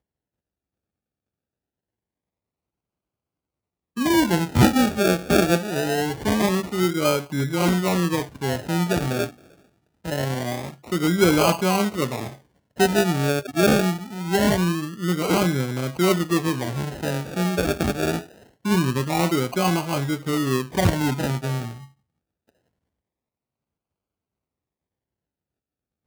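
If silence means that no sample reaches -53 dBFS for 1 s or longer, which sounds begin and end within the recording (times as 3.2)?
3.96–22.49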